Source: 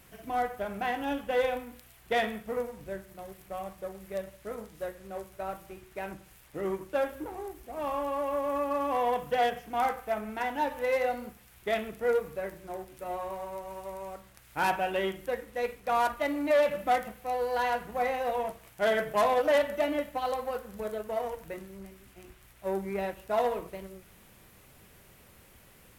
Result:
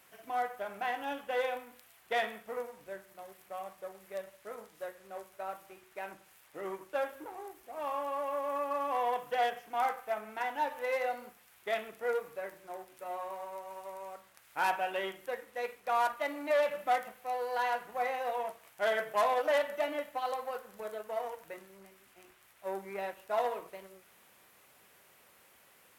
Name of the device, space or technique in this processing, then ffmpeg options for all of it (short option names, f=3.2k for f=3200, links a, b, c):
filter by subtraction: -filter_complex "[0:a]asplit=2[a][b];[b]lowpass=900,volume=-1[c];[a][c]amix=inputs=2:normalize=0,volume=-4dB"